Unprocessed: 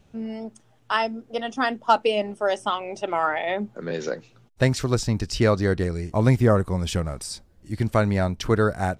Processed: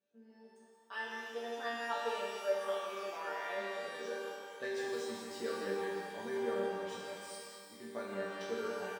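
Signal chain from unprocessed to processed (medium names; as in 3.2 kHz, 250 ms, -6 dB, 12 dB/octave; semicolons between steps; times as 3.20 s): median filter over 3 samples; high-pass 270 Hz 12 dB/octave; level rider gain up to 8 dB; chord resonator G3 minor, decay 0.56 s; small resonant body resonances 450/1600/3900 Hz, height 9 dB, ringing for 25 ms; on a send: delay 164 ms -7.5 dB; on the sum: pitch-shifted reverb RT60 2.2 s, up +12 st, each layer -8 dB, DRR -0.5 dB; trim -6.5 dB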